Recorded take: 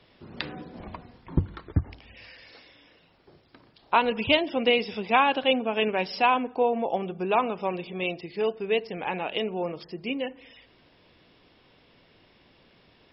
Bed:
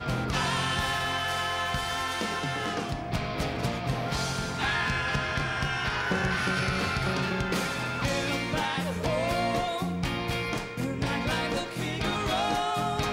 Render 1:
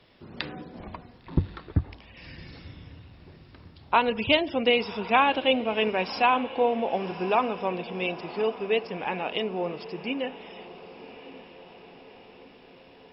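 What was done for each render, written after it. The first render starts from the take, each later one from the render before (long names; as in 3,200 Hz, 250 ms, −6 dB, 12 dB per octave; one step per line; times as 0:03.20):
feedback delay with all-pass diffusion 1,088 ms, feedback 57%, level −16 dB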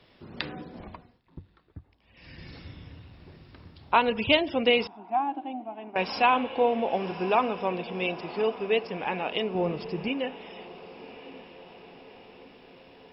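0:00.73–0:02.49: duck −20.5 dB, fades 0.50 s
0:04.87–0:05.96: pair of resonant band-passes 480 Hz, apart 1.3 octaves
0:09.55–0:10.08: low-shelf EQ 210 Hz +12 dB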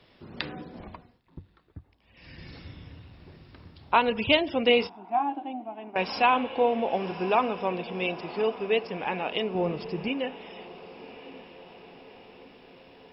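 0:04.67–0:05.45: double-tracking delay 21 ms −9 dB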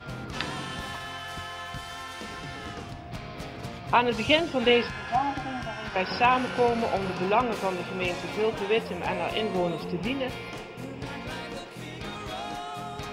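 mix in bed −8 dB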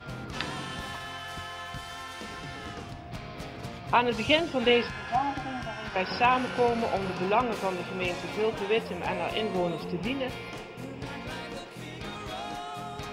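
level −1.5 dB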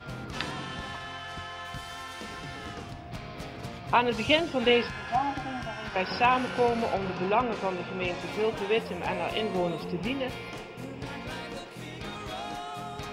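0:00.51–0:01.65: high-frequency loss of the air 51 metres
0:06.94–0:08.21: high-frequency loss of the air 78 metres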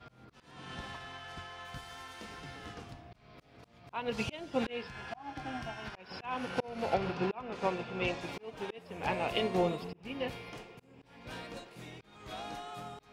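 volume swells 335 ms
expander for the loud parts 1.5 to 1, over −43 dBFS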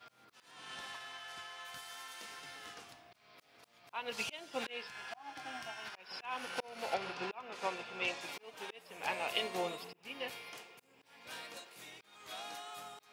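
high-pass filter 1,100 Hz 6 dB per octave
high-shelf EQ 8,300 Hz +11 dB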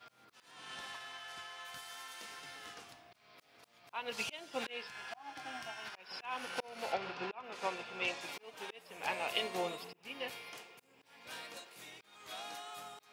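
0:06.92–0:07.44: high-frequency loss of the air 79 metres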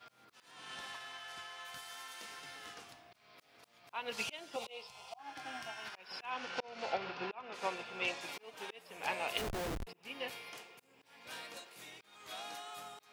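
0:04.56–0:05.19: phaser with its sweep stopped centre 690 Hz, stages 4
0:06.30–0:07.54: low-pass filter 6,400 Hz 24 dB per octave
0:09.37–0:09.87: comparator with hysteresis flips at −38.5 dBFS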